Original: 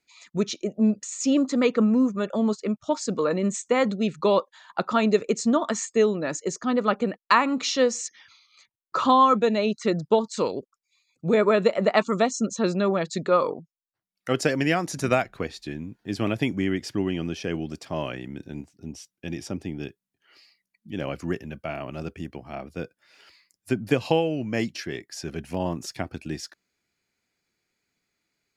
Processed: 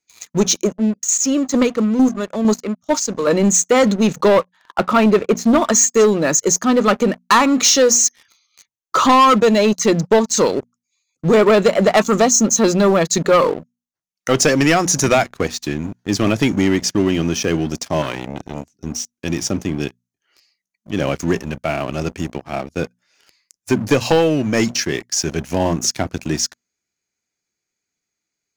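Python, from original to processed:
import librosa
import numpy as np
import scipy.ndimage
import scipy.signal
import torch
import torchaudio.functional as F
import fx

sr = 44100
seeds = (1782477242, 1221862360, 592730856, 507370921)

y = fx.chopper(x, sr, hz=2.2, depth_pct=60, duty_pct=20, at=(0.63, 3.27))
y = fx.lowpass(y, sr, hz=2700.0, slope=12, at=(4.28, 5.56))
y = fx.transformer_sat(y, sr, knee_hz=1200.0, at=(18.02, 18.72))
y = fx.peak_eq(y, sr, hz=6300.0, db=12.5, octaves=0.4)
y = fx.hum_notches(y, sr, base_hz=60, count=4)
y = fx.leveller(y, sr, passes=3)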